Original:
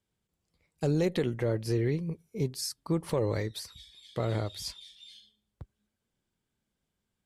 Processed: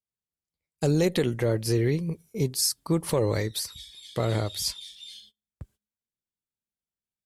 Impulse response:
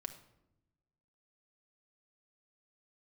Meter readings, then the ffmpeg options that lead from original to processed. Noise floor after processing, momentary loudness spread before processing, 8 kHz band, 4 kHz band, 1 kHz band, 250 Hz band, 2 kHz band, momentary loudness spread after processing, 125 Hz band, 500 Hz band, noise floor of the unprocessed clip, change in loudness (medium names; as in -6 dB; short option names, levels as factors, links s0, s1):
under -85 dBFS, 18 LU, +11.0 dB, +8.5 dB, +4.5 dB, +4.0 dB, +5.5 dB, 14 LU, +4.0 dB, +4.0 dB, -84 dBFS, +5.0 dB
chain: -af "aemphasis=mode=production:type=cd,agate=range=0.0708:threshold=0.00126:ratio=16:detection=peak,volume=1.68"